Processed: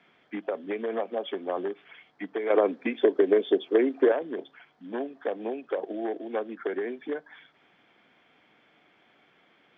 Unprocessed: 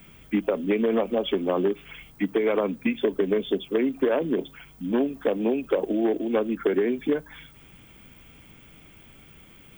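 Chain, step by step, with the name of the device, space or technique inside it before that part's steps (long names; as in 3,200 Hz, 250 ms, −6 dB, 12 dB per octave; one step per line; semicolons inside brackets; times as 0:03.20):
phone earpiece (loudspeaker in its box 350–4,400 Hz, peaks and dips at 730 Hz +6 dB, 1,700 Hz +5 dB, 2,700 Hz −6 dB)
0:02.50–0:04.12: drawn EQ curve 160 Hz 0 dB, 330 Hz +12 dB, 900 Hz +5 dB
level −6 dB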